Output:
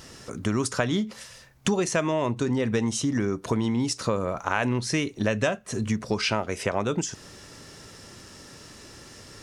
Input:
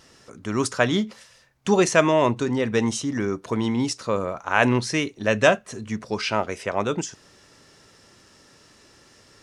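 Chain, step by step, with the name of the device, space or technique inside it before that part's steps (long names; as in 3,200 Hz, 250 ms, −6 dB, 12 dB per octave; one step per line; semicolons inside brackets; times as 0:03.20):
ASMR close-microphone chain (low-shelf EQ 240 Hz +6 dB; downward compressor 6 to 1, threshold −28 dBFS, peak gain reduction 16.5 dB; high-shelf EQ 8,800 Hz +7 dB)
level +5.5 dB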